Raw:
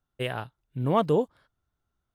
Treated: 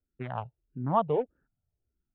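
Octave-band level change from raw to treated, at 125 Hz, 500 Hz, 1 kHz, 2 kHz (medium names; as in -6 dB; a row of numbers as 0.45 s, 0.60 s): -5.0 dB, -4.0 dB, 0.0 dB, -10.0 dB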